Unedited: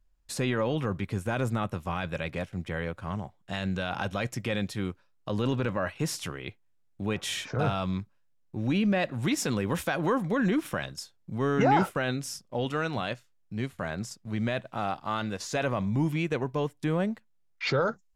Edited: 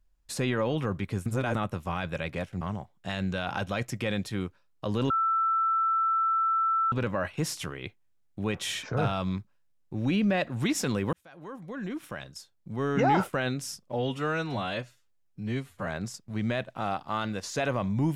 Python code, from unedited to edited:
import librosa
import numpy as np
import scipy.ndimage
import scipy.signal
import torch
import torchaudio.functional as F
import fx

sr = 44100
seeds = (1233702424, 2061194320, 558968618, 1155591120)

y = fx.edit(x, sr, fx.reverse_span(start_s=1.26, length_s=0.29),
    fx.cut(start_s=2.61, length_s=0.44),
    fx.insert_tone(at_s=5.54, length_s=1.82, hz=1330.0, db=-22.5),
    fx.fade_in_span(start_s=9.75, length_s=2.21),
    fx.stretch_span(start_s=12.54, length_s=1.3, factor=1.5), tone=tone)